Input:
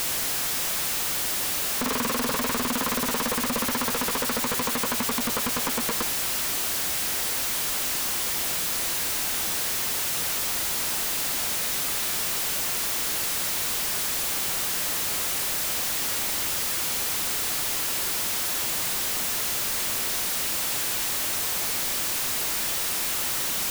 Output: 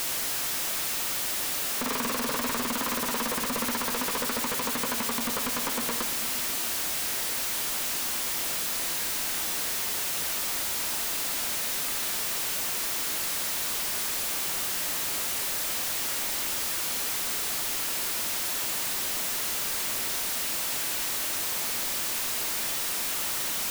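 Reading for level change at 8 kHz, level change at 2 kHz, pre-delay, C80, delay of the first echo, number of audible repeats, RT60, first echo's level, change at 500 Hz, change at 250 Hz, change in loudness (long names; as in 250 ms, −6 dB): −3.0 dB, −2.5 dB, 3 ms, 12.0 dB, no echo audible, no echo audible, 2.1 s, no echo audible, −3.0 dB, −3.5 dB, −3.0 dB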